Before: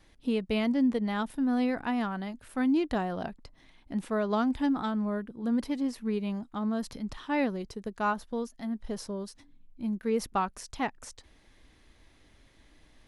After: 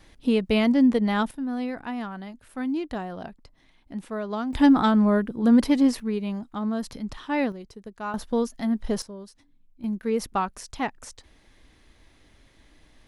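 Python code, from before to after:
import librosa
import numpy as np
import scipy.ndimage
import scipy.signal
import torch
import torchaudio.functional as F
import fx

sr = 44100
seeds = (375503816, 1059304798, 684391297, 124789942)

y = fx.gain(x, sr, db=fx.steps((0.0, 7.0), (1.31, -2.0), (4.53, 11.0), (6.0, 3.0), (7.52, -4.0), (8.14, 9.0), (9.02, -4.0), (9.84, 3.0)))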